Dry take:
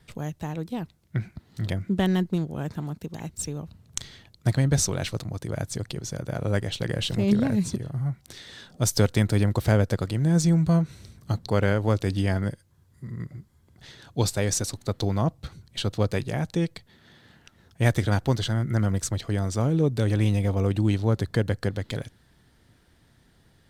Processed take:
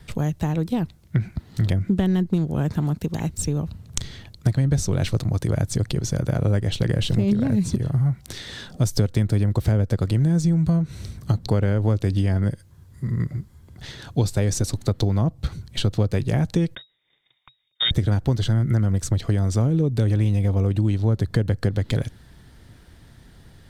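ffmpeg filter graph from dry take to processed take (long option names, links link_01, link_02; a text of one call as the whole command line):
ffmpeg -i in.wav -filter_complex "[0:a]asettb=1/sr,asplit=3[link_01][link_02][link_03];[link_01]atrim=end=16.754[link_04];[link_02]atrim=start=16.75:end=17.91,asetpts=PTS-STARTPTS,afade=type=in:duration=0.004:curve=qsin,afade=type=out:start_time=1.156:duration=0.004:curve=qsin,agate=range=-25dB:threshold=-51dB:ratio=16:release=100:detection=peak,lowpass=frequency=3200:width_type=q:width=0.5098,lowpass=frequency=3200:width_type=q:width=0.6013,lowpass=frequency=3200:width_type=q:width=0.9,lowpass=frequency=3200:width_type=q:width=2.563,afreqshift=-3800,equalizer=frequency=130:width_type=o:width=0.43:gain=12[link_05];[link_03]atrim=start=17.906[link_06];[link_04][link_05]acrossfade=duration=0.004:curve1=hsin:curve2=qsin[link_07];[link_07][link_06]acrossfade=duration=0.004:curve1=qsin:curve2=hsin,acrossover=split=500[link_08][link_09];[link_09]acompressor=threshold=-42dB:ratio=1.5[link_10];[link_08][link_10]amix=inputs=2:normalize=0,lowshelf=frequency=110:gain=8,acompressor=threshold=-25dB:ratio=6,volume=8dB" out.wav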